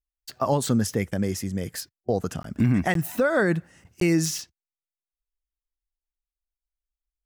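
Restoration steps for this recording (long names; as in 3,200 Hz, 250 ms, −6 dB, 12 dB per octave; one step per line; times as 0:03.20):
repair the gap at 0:02.43/0:02.94/0:04.00, 13 ms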